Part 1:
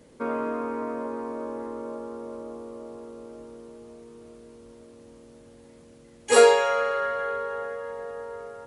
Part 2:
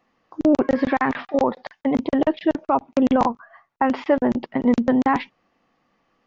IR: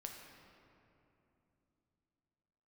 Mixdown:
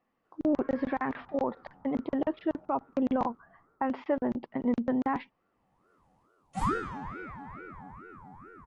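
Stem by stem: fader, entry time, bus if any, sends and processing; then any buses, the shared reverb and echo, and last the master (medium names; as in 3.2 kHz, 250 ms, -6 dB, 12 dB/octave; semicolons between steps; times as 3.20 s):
3.68 s -14 dB -> 3.90 s -21.5 dB, 0.25 s, send -18 dB, peaking EQ 520 Hz +12 dB 1 oct; ring modulator with a swept carrier 600 Hz, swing 55%, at 2.3 Hz; auto duck -23 dB, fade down 0.30 s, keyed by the second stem
-10.0 dB, 0.00 s, no send, low-pass 2 kHz 6 dB/octave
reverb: on, RT60 3.0 s, pre-delay 7 ms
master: none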